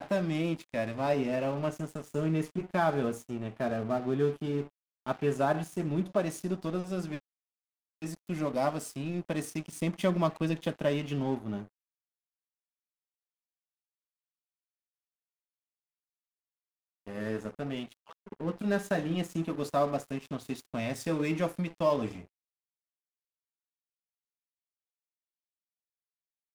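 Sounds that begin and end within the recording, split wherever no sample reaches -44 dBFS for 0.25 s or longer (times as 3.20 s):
5.06–7.19 s
8.02–11.66 s
17.07–22.25 s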